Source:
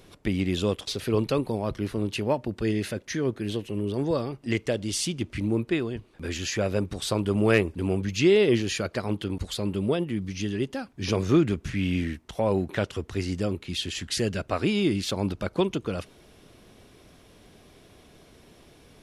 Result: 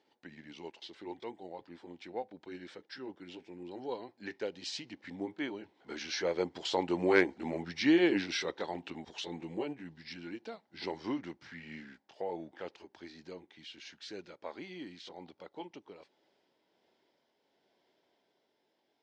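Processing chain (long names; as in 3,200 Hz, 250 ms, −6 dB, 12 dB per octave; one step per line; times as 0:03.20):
pitch glide at a constant tempo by −4.5 semitones ending unshifted
source passing by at 0:07.44, 20 m/s, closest 29 metres
loudspeaker in its box 380–5,500 Hz, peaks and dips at 840 Hz +7 dB, 1,200 Hz −8 dB, 2,600 Hz −6 dB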